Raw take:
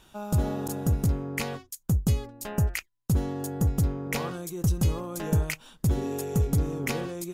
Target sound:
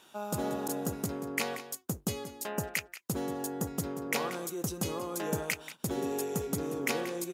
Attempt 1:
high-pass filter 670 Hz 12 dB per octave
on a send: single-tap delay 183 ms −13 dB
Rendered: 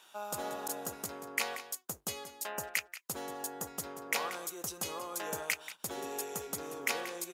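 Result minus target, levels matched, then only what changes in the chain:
250 Hz band −9.5 dB
change: high-pass filter 280 Hz 12 dB per octave

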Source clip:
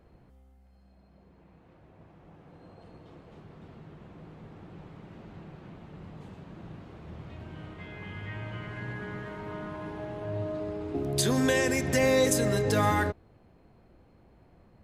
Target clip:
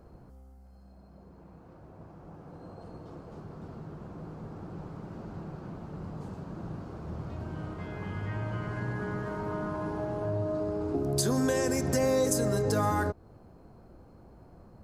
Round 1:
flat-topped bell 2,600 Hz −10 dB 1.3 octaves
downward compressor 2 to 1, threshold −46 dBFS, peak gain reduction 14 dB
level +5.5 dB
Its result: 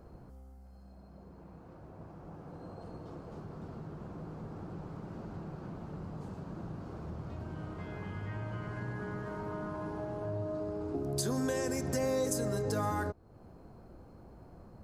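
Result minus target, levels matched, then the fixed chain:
downward compressor: peak gain reduction +5.5 dB
flat-topped bell 2,600 Hz −10 dB 1.3 octaves
downward compressor 2 to 1, threshold −35 dBFS, peak gain reduction 8.5 dB
level +5.5 dB

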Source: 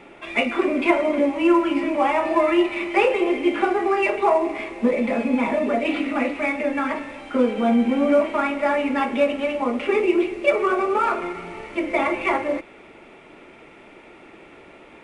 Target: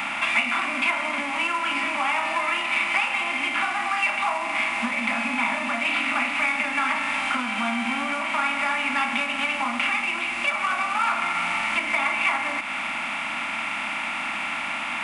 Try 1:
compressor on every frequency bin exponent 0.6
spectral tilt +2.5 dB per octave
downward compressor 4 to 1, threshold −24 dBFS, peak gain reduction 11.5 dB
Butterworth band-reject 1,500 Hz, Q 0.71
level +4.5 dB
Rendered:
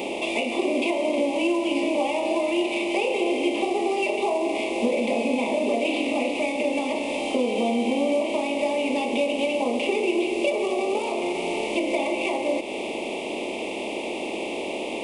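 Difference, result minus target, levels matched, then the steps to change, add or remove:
500 Hz band +15.0 dB
change: Butterworth band-reject 430 Hz, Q 0.71

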